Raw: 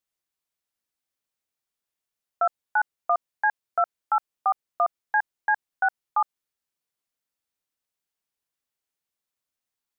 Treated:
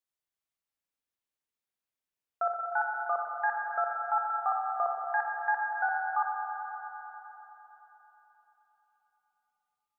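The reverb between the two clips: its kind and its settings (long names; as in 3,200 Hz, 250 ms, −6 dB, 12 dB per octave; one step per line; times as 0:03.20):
spring reverb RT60 4 s, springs 43/60 ms, chirp 80 ms, DRR −0.5 dB
level −7.5 dB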